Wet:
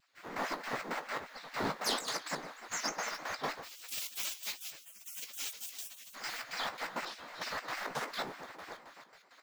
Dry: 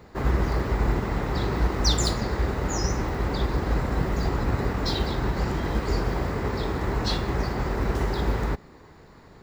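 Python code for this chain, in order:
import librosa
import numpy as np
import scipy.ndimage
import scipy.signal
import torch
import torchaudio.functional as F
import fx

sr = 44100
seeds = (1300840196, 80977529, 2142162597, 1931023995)

y = fx.tilt_eq(x, sr, slope=3.5, at=(3.62, 6.14), fade=0.02)
y = np.clip(10.0 ** (17.5 / 20.0) * y, -1.0, 1.0) / 10.0 ** (17.5 / 20.0)
y = fx.rider(y, sr, range_db=10, speed_s=0.5)
y = fx.echo_feedback(y, sr, ms=289, feedback_pct=39, wet_db=-11.5)
y = fx.step_gate(y, sr, bpm=166, pattern='....xx.xx.x.x', floor_db=-12.0, edge_ms=4.5)
y = fx.low_shelf(y, sr, hz=88.0, db=11.5)
y = fx.hum_notches(y, sr, base_hz=50, count=6)
y = fx.doubler(y, sr, ms=18.0, db=-9.0)
y = fx.spec_gate(y, sr, threshold_db=-25, keep='weak')
y = fx.vibrato_shape(y, sr, shape='square', rate_hz=6.6, depth_cents=100.0)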